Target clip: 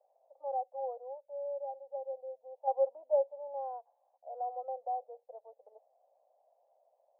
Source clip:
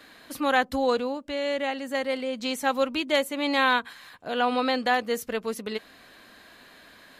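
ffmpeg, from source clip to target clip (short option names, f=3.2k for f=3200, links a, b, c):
-filter_complex "[0:a]asettb=1/sr,asplit=3[a][b][c];[a]atrim=end=2.674[d];[b]atrim=start=2.67:end=3.31,asetpts=PTS-STARTPTS,afade=t=in:d=0.004:c=qsin,afade=t=out:st=0.636:d=0.004:c=qsin,acontrast=85[e];[c]atrim=start=3.306[f];[d][e]acrossfade=d=0.004:c1=hsin:c2=qsin[g];[g][f]acrossfade=d=0.004:c1=qsin:c2=hsin,asuperpass=centerf=660:order=8:qfactor=2.1,volume=-9dB"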